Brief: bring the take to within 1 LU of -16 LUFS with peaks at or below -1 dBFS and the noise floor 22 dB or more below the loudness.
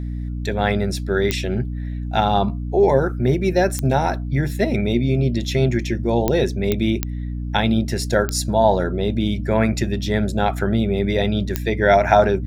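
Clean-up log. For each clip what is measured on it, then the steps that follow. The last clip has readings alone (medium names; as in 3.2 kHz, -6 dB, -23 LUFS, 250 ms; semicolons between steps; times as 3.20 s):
clicks found 7; hum 60 Hz; highest harmonic 300 Hz; hum level -24 dBFS; loudness -20.0 LUFS; peak level -2.0 dBFS; loudness target -16.0 LUFS
-> de-click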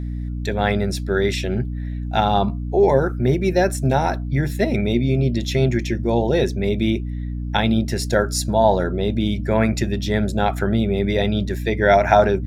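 clicks found 0; hum 60 Hz; highest harmonic 300 Hz; hum level -24 dBFS
-> hum notches 60/120/180/240/300 Hz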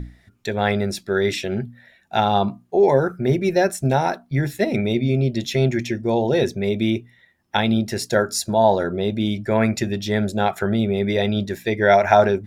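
hum not found; loudness -20.5 LUFS; peak level -2.0 dBFS; loudness target -16.0 LUFS
-> trim +4.5 dB; peak limiter -1 dBFS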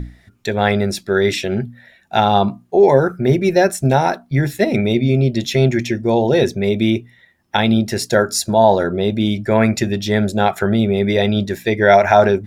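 loudness -16.5 LUFS; peak level -1.0 dBFS; noise floor -53 dBFS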